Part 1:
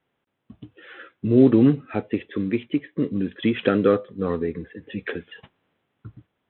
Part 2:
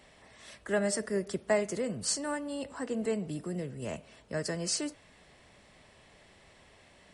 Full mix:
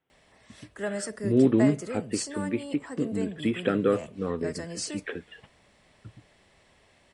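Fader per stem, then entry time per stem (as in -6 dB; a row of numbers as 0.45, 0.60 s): -5.5, -2.5 dB; 0.00, 0.10 s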